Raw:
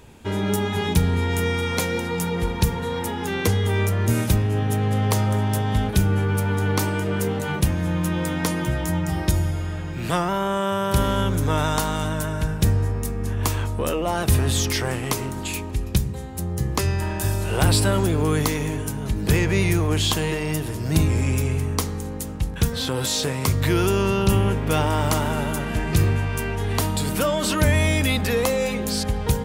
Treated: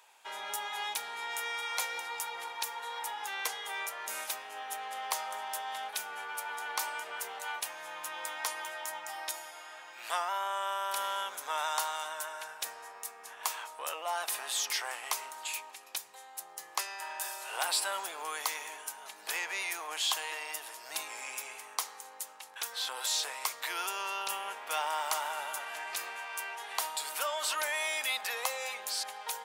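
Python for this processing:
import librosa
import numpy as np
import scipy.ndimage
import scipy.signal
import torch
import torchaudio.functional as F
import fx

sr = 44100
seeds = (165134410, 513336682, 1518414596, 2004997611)

y = scipy.signal.sosfilt(scipy.signal.cheby1(3, 1.0, 780.0, 'highpass', fs=sr, output='sos'), x)
y = F.gain(torch.from_numpy(y), -6.5).numpy()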